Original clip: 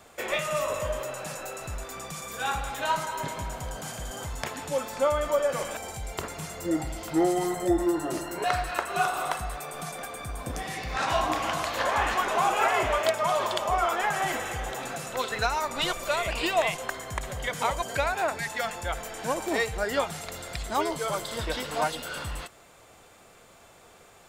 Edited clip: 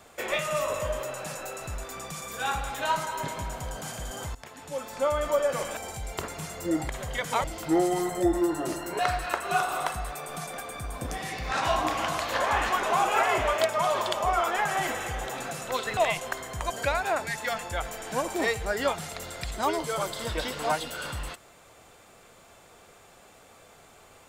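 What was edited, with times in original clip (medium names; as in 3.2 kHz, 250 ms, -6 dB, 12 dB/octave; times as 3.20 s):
4.35–5.26 s: fade in, from -16.5 dB
15.42–16.54 s: delete
17.18–17.73 s: move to 6.89 s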